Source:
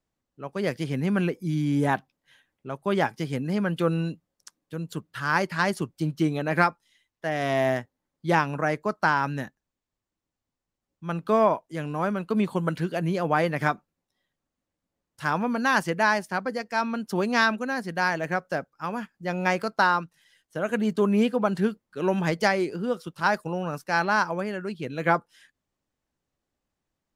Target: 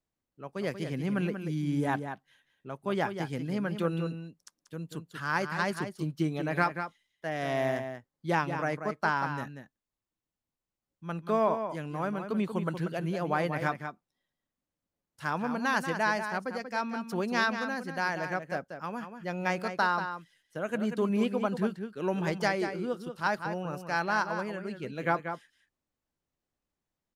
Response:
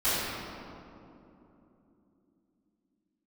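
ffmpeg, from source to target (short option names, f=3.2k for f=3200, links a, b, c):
-filter_complex "[0:a]asplit=2[a][b];[b]adelay=186.6,volume=-8dB,highshelf=f=4k:g=-4.2[c];[a][c]amix=inputs=2:normalize=0,volume=-6dB"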